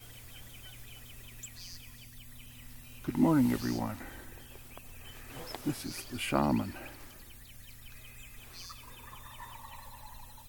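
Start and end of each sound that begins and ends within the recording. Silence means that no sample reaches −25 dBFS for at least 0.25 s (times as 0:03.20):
0:03.09–0:03.90
0:05.55–0:05.70
0:06.24–0:06.61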